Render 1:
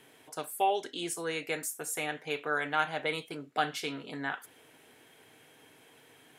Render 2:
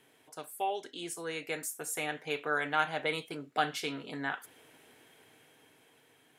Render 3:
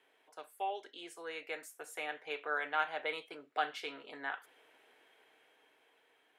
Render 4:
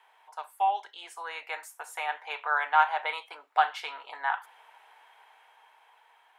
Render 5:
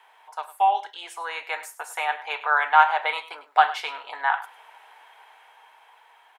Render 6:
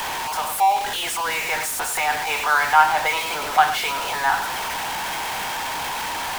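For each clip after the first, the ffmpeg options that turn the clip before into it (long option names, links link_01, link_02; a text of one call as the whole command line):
ffmpeg -i in.wav -af "dynaudnorm=framelen=430:gausssize=7:maxgain=6dB,volume=-6dB" out.wav
ffmpeg -i in.wav -filter_complex "[0:a]acrossover=split=360 3900:gain=0.0794 1 0.251[link_01][link_02][link_03];[link_01][link_02][link_03]amix=inputs=3:normalize=0,volume=-3.5dB" out.wav
ffmpeg -i in.wav -af "highpass=frequency=900:width_type=q:width=4.9,volume=4.5dB" out.wav
ffmpeg -i in.wav -af "aecho=1:1:102:0.158,volume=6dB" out.wav
ffmpeg -i in.wav -af "aeval=exprs='val(0)+0.5*0.0841*sgn(val(0))':channel_layout=same" out.wav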